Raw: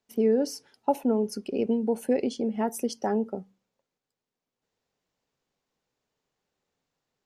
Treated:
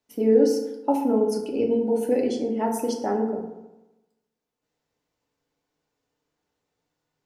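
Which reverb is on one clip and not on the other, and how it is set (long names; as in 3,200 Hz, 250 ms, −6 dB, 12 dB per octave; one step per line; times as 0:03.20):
feedback delay network reverb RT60 1 s, low-frequency decay 1×, high-frequency decay 0.45×, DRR −0.5 dB
level −1 dB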